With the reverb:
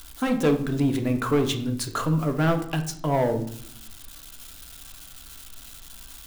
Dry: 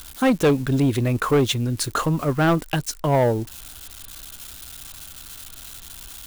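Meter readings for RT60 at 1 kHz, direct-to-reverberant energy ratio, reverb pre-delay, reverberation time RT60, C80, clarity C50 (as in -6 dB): 0.60 s, 5.0 dB, 3 ms, 0.65 s, 14.5 dB, 10.5 dB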